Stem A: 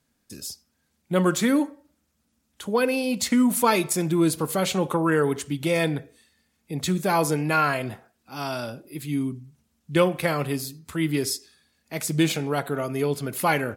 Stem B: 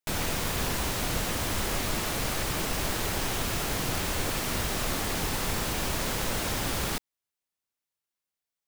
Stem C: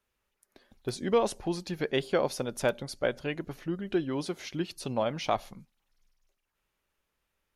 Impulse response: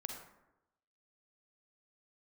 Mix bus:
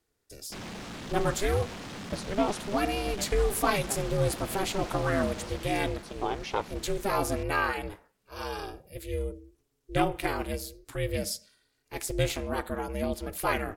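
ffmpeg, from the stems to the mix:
-filter_complex "[0:a]volume=0.708,asplit=2[s0][s1];[1:a]lowpass=5500,asoftclip=type=hard:threshold=0.0316,adelay=450,volume=0.596,afade=t=out:st=5.28:d=0.75:silence=0.421697[s2];[2:a]adelay=1250,volume=1.12[s3];[s1]apad=whole_len=388334[s4];[s3][s4]sidechaincompress=threshold=0.0178:ratio=8:attack=16:release=338[s5];[s0][s2][s5]amix=inputs=3:normalize=0,aeval=exprs='val(0)*sin(2*PI*200*n/s)':c=same"

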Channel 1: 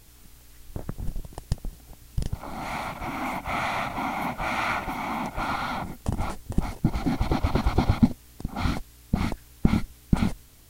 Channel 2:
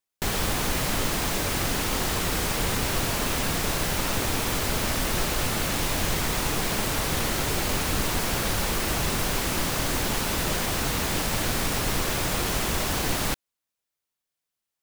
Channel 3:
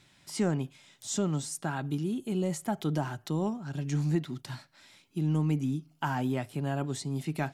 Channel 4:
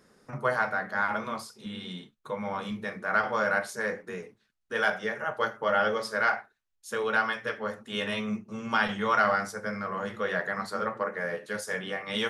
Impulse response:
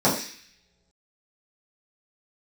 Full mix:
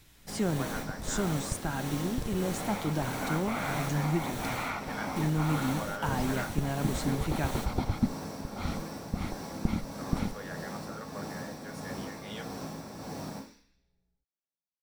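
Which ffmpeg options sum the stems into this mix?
-filter_complex "[0:a]volume=0.376[s0];[1:a]tremolo=f=1.6:d=0.47,adelay=50,volume=0.178,asplit=2[s1][s2];[s2]volume=0.15[s3];[2:a]volume=0.841,asplit=2[s4][s5];[3:a]adelay=150,volume=0.2,asplit=3[s6][s7][s8];[s6]atrim=end=7.26,asetpts=PTS-STARTPTS,afade=t=out:st=7.256:d=0.004:c=hsin[s9];[s7]atrim=start=7.26:end=9.98,asetpts=PTS-STARTPTS,volume=0[s10];[s8]atrim=start=9.98,asetpts=PTS-STARTPTS,afade=t=in:d=0.004:c=hsin[s11];[s9][s10][s11]concat=n=3:v=0:a=1[s12];[s5]apad=whole_len=655968[s13];[s1][s13]sidechaingate=range=0.0224:threshold=0.002:ratio=16:detection=peak[s14];[4:a]atrim=start_sample=2205[s15];[s3][s15]afir=irnorm=-1:irlink=0[s16];[s0][s14][s4][s12][s16]amix=inputs=5:normalize=0"

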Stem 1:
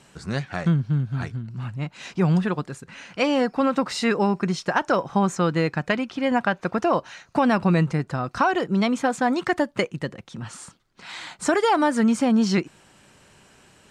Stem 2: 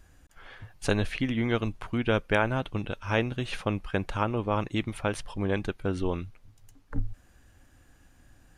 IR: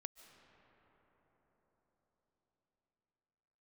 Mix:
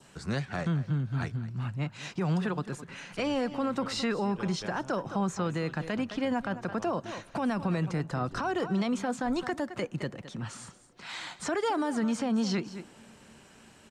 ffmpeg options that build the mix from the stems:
-filter_complex "[0:a]volume=0.708,asplit=3[s0][s1][s2];[s1]volume=0.126[s3];[s2]volume=0.141[s4];[1:a]adelay=2300,volume=0.133[s5];[2:a]atrim=start_sample=2205[s6];[s3][s6]afir=irnorm=-1:irlink=0[s7];[s4]aecho=0:1:213:1[s8];[s0][s5][s7][s8]amix=inputs=4:normalize=0,acrossover=split=190|430|6300[s9][s10][s11][s12];[s9]acompressor=threshold=0.0316:ratio=4[s13];[s10]acompressor=threshold=0.0251:ratio=4[s14];[s11]acompressor=threshold=0.0398:ratio=4[s15];[s12]acompressor=threshold=0.00316:ratio=4[s16];[s13][s14][s15][s16]amix=inputs=4:normalize=0,adynamicequalizer=threshold=0.00398:dfrequency=2200:dqfactor=2.5:tfrequency=2200:tqfactor=2.5:attack=5:release=100:ratio=0.375:range=2:mode=cutabove:tftype=bell,alimiter=limit=0.0841:level=0:latency=1:release=38"

